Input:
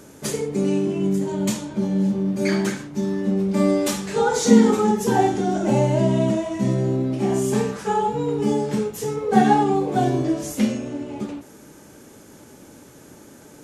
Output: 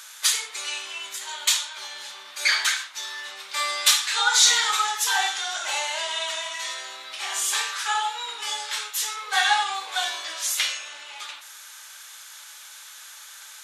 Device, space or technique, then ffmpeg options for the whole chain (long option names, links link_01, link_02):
headphones lying on a table: -af "highpass=frequency=1200:width=0.5412,highpass=frequency=1200:width=1.3066,equalizer=frequency=3700:width_type=o:width=0.57:gain=9,volume=8dB"